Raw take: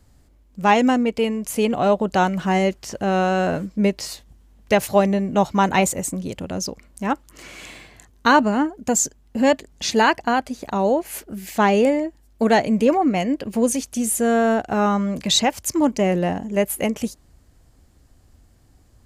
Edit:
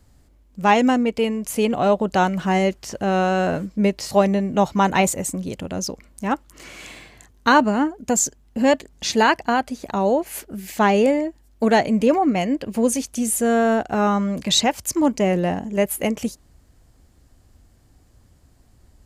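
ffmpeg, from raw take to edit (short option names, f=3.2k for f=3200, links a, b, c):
-filter_complex "[0:a]asplit=2[a][b];[a]atrim=end=4.112[c];[b]atrim=start=4.898[d];[c][d]acrossfade=d=0.004:c1=hsin:c2=hsin"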